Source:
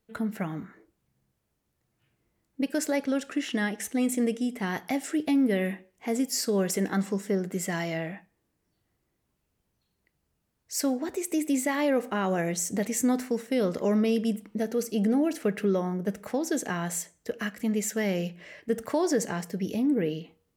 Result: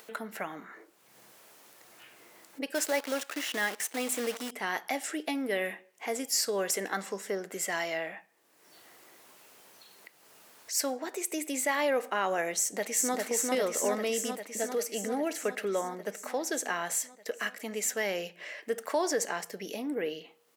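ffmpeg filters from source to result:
-filter_complex "[0:a]asplit=3[s0][s1][s2];[s0]afade=t=out:st=2.74:d=0.02[s3];[s1]acrusher=bits=7:dc=4:mix=0:aa=0.000001,afade=t=in:st=2.74:d=0.02,afade=t=out:st=4.5:d=0.02[s4];[s2]afade=t=in:st=4.5:d=0.02[s5];[s3][s4][s5]amix=inputs=3:normalize=0,asplit=2[s6][s7];[s7]afade=t=in:st=12.58:d=0.01,afade=t=out:st=13.15:d=0.01,aecho=0:1:400|800|1200|1600|2000|2400|2800|3200|3600|4000|4400|4800:0.794328|0.595746|0.44681|0.335107|0.25133|0.188498|0.141373|0.10603|0.0795225|0.0596419|0.0447314|0.0335486[s8];[s6][s8]amix=inputs=2:normalize=0,highpass=550,acompressor=mode=upward:threshold=0.0141:ratio=2.5,volume=1.19"

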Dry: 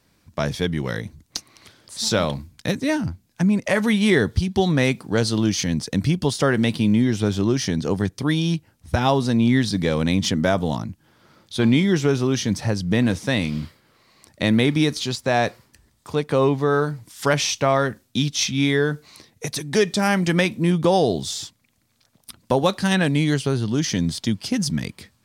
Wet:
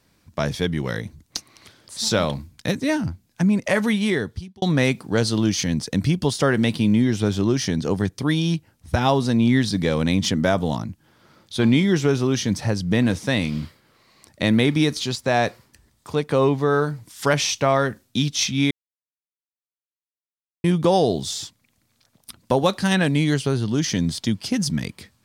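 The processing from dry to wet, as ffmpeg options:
-filter_complex "[0:a]asplit=4[s0][s1][s2][s3];[s0]atrim=end=4.62,asetpts=PTS-STARTPTS,afade=t=out:st=3.77:d=0.85[s4];[s1]atrim=start=4.62:end=18.71,asetpts=PTS-STARTPTS,afade=t=in:d=0.004:c=hsin,afade=t=out:st=14.086:d=0.004:c=hsin[s5];[s2]atrim=start=18.71:end=20.64,asetpts=PTS-STARTPTS,volume=0[s6];[s3]atrim=start=20.64,asetpts=PTS-STARTPTS,afade=t=in:d=0.004:c=hsin[s7];[s4][s5][s6][s7]concat=n=4:v=0:a=1"

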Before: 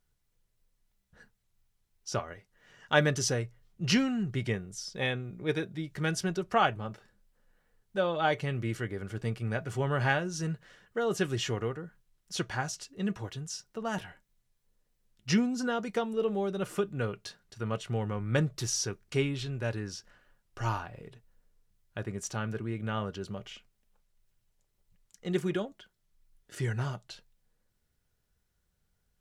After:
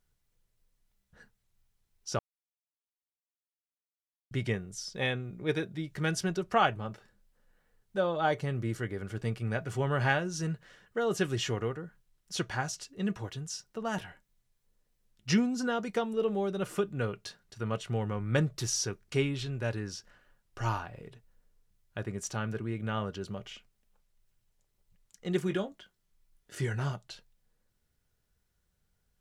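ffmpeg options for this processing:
-filter_complex "[0:a]asettb=1/sr,asplit=3[s0][s1][s2];[s0]atrim=end=7.974[s3];[s1]atrim=start=7.97:end=8.83,asetpts=PTS-STARTPTS,afade=t=in:d=0.004:c=qsin,afade=t=out:st=0.856:d=0.004:c=qsin,equalizer=f=2600:w=1.4:g=-6.5[s4];[s2]atrim=start=8.826[s5];[s3][s4]acrossfade=d=0.004:c1=hsin:c2=qsin[s6];[s6][s5]acrossfade=d=0.004:c1=qsin:c2=hsin,asettb=1/sr,asplit=3[s7][s8][s9];[s7]atrim=end=25.474[s10];[s8]atrim=start=25.47:end=26.92,asetpts=PTS-STARTPTS,afade=t=in:d=0.004:c=qsin,afade=t=out:st=1.446:d=0.004:c=qsin,asplit=2[s11][s12];[s12]adelay=21,volume=0.355[s13];[s11][s13]amix=inputs=2:normalize=0,atrim=end_sample=63945[s14];[s9]atrim=start=26.916[s15];[s10][s14]acrossfade=d=0.004:c1=hsin:c2=qsin[s16];[s16][s15]acrossfade=d=0.004:c1=qsin:c2=hsin,asplit=3[s17][s18][s19];[s17]atrim=end=2.19,asetpts=PTS-STARTPTS,afade=t=out:st=2.186:d=0.004:c=hsin[s20];[s18]atrim=start=2.19:end=4.31,asetpts=PTS-STARTPTS,volume=0[s21];[s19]atrim=start=4.31,asetpts=PTS-STARTPTS,afade=t=in:d=0.004:c=hsin[s22];[s20][s21][s22]concat=n=3:v=0:a=1"

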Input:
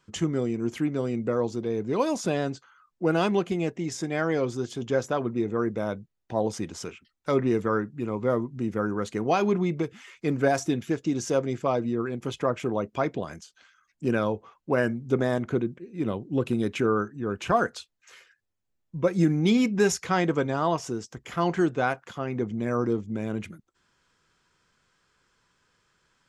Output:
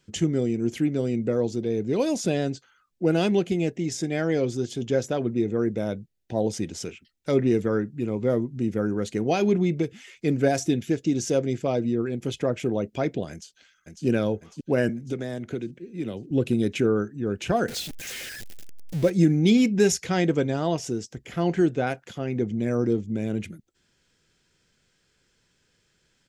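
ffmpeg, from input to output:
-filter_complex "[0:a]asplit=2[s0][s1];[s1]afade=t=in:st=13.31:d=0.01,afade=t=out:st=14.05:d=0.01,aecho=0:1:550|1100|1650|2200|2750|3300|3850:0.595662|0.327614|0.180188|0.0991033|0.0545068|0.0299787|0.0164883[s2];[s0][s2]amix=inputs=2:normalize=0,asettb=1/sr,asplit=3[s3][s4][s5];[s3]atrim=end=14.894[s6];[s4]atrim=start=14.89:end=16.31,asetpts=PTS-STARTPTS,afade=t=in:d=0.004:c=qsin,afade=t=out:st=1.416:d=0.004:c=qsin,acrossover=split=230|1200[s7][s8][s9];[s7]acompressor=threshold=0.01:ratio=4[s10];[s8]acompressor=threshold=0.0224:ratio=4[s11];[s9]acompressor=threshold=0.00794:ratio=4[s12];[s10][s11][s12]amix=inputs=3:normalize=0[s13];[s5]atrim=start=16.306[s14];[s6][s13]acrossfade=d=0.004:c1=hsin:c2=qsin[s15];[s15][s14]acrossfade=d=0.004:c1=qsin:c2=hsin,asettb=1/sr,asplit=3[s16][s17][s18];[s16]atrim=end=17.684[s19];[s17]atrim=start=17.68:end=19.1,asetpts=PTS-STARTPTS,afade=t=in:d=0.004:c=qsin,afade=t=out:st=1.416:d=0.004:c=qsin,aeval=exprs='val(0)+0.5*0.0237*sgn(val(0))':c=same[s20];[s18]atrim=start=19.096[s21];[s19][s20]acrossfade=d=0.004:c1=hsin:c2=qsin[s22];[s22][s21]acrossfade=d=0.004:c1=qsin:c2=hsin,asettb=1/sr,asplit=3[s23][s24][s25];[s23]atrim=end=21.094[s26];[s24]atrim=start=21.09:end=21.87,asetpts=PTS-STARTPTS,afade=t=in:d=0.004:c=qsin,afade=t=out:st=0.776:d=0.004:c=qsin,acrossover=split=2700[s27][s28];[s28]acompressor=threshold=0.00355:ratio=4:attack=1:release=60[s29];[s27][s29]amix=inputs=2:normalize=0[s30];[s25]atrim=start=21.866[s31];[s26][s30]acrossfade=d=0.004:c1=hsin:c2=qsin[s32];[s32][s31]acrossfade=d=0.004:c1=qsin:c2=hsin,equalizer=f=1100:t=o:w=0.88:g=-14.5,volume=1.5"

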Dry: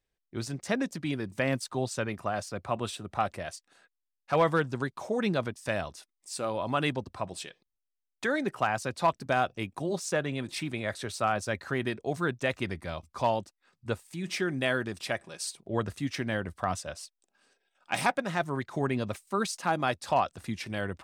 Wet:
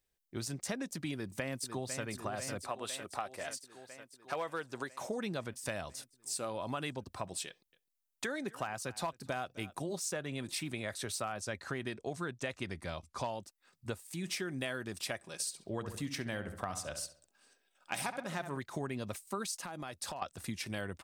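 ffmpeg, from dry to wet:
-filter_complex "[0:a]asplit=2[s0][s1];[s1]afade=t=in:st=1.13:d=0.01,afade=t=out:st=2.03:d=0.01,aecho=0:1:500|1000|1500|2000|2500|3000|3500|4000|4500|5000:0.334965|0.234476|0.164133|0.114893|0.0804252|0.0562976|0.0394083|0.0275858|0.0193101|0.0135171[s2];[s0][s2]amix=inputs=2:normalize=0,asettb=1/sr,asplit=3[s3][s4][s5];[s3]atrim=end=2.624[s6];[s4]atrim=start=2.62:end=5.01,asetpts=PTS-STARTPTS,afade=t=in:d=0.004:c=qsin,afade=t=out:st=2.386:d=0.004:c=qsin,bass=f=250:g=-13,treble=f=4000:g=-2[s7];[s5]atrim=start=5.006[s8];[s6][s7]acrossfade=d=0.004:c1=hsin:c2=qsin[s9];[s9][s8]acrossfade=d=0.004:c1=qsin:c2=hsin,asettb=1/sr,asplit=3[s10][s11][s12];[s10]atrim=end=7.474[s13];[s11]atrim=start=7.47:end=9.76,asetpts=PTS-STARTPTS,afade=t=in:d=0.004:c=qsin,afade=t=out:st=2.286:d=0.004:c=qsin,aecho=1:1:257:0.0708,atrim=end_sample=100989[s14];[s12]atrim=start=9.756[s15];[s13][s14]acrossfade=d=0.004:c1=hsin:c2=qsin[s16];[s16][s15]acrossfade=d=0.004:c1=qsin:c2=hsin,asettb=1/sr,asplit=3[s17][s18][s19];[s17]atrim=end=11.414[s20];[s18]atrim=start=11.41:end=13.29,asetpts=PTS-STARTPTS,afade=t=in:d=0.004:c=qsin,afade=t=out:st=1.876:d=0.004:c=qsin,lowpass=9300[s21];[s19]atrim=start=13.286[s22];[s20][s21]acrossfade=d=0.004:c1=hsin:c2=qsin[s23];[s23][s22]acrossfade=d=0.004:c1=qsin:c2=hsin,asettb=1/sr,asplit=3[s24][s25][s26];[s24]atrim=end=15.334[s27];[s25]atrim=start=15.33:end=18.58,asetpts=PTS-STARTPTS,afade=t=in:d=0.004:c=qsin,afade=t=out:st=3.246:d=0.004:c=qsin,asplit=2[s28][s29];[s29]adelay=67,lowpass=f=2500:p=1,volume=0.316,asplit=2[s30][s31];[s31]adelay=67,lowpass=f=2500:p=1,volume=0.46,asplit=2[s32][s33];[s33]adelay=67,lowpass=f=2500:p=1,volume=0.46,asplit=2[s34][s35];[s35]adelay=67,lowpass=f=2500:p=1,volume=0.46,asplit=2[s36][s37];[s37]adelay=67,lowpass=f=2500:p=1,volume=0.46[s38];[s28][s30][s32][s34][s36][s38]amix=inputs=6:normalize=0,atrim=end_sample=143325[s39];[s26]atrim=start=18.576[s40];[s27][s39]acrossfade=d=0.004:c1=hsin:c2=qsin[s41];[s41][s40]acrossfade=d=0.004:c1=qsin:c2=hsin,asettb=1/sr,asplit=3[s42][s43][s44];[s42]atrim=end=19.634[s45];[s43]atrim=start=19.63:end=20.22,asetpts=PTS-STARTPTS,afade=t=in:d=0.004:c=qsin,afade=t=out:st=0.586:d=0.004:c=qsin,acompressor=threshold=0.0158:ratio=12:attack=3.2:release=140:knee=1:detection=peak[s46];[s44]atrim=start=20.216[s47];[s45][s46]acrossfade=d=0.004:c1=hsin:c2=qsin[s48];[s48][s47]acrossfade=d=0.004:c1=qsin:c2=hsin,highshelf=f=6200:g=11.5,acompressor=threshold=0.0251:ratio=6,volume=0.75"

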